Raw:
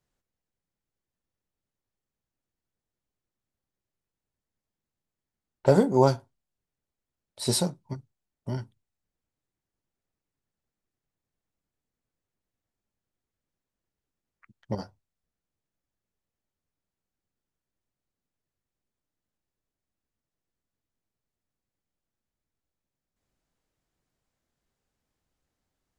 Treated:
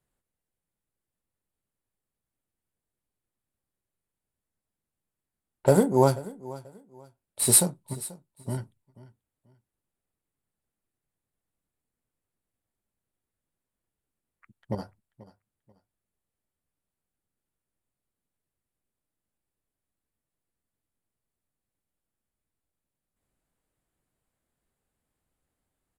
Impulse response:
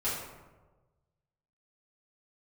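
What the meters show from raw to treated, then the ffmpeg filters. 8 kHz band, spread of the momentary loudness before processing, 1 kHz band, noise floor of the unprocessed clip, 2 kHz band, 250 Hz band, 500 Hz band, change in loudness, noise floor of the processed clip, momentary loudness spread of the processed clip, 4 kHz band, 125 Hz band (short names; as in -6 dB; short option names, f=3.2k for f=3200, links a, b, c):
+12.0 dB, 20 LU, 0.0 dB, under -85 dBFS, +1.0 dB, 0.0 dB, 0.0 dB, +2.0 dB, under -85 dBFS, 22 LU, -1.0 dB, 0.0 dB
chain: -af "aexciter=amount=11.5:drive=6.6:freq=8.4k,adynamicsmooth=sensitivity=8:basefreq=5.2k,aecho=1:1:486|972:0.112|0.0292"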